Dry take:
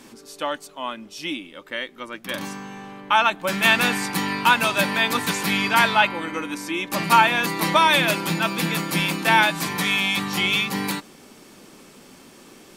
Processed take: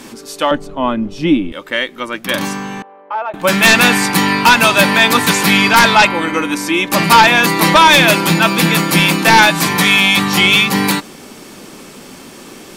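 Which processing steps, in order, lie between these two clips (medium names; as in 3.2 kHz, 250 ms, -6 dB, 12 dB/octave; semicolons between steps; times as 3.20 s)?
sine folder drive 8 dB, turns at -2 dBFS; 0.51–1.52 s: tilt EQ -4.5 dB/octave; 2.82–3.34 s: ladder band-pass 670 Hz, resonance 50%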